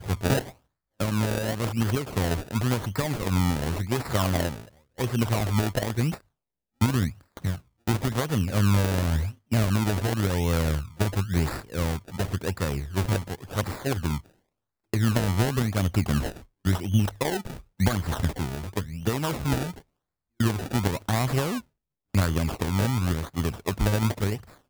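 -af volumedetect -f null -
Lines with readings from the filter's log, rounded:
mean_volume: -26.4 dB
max_volume: -9.7 dB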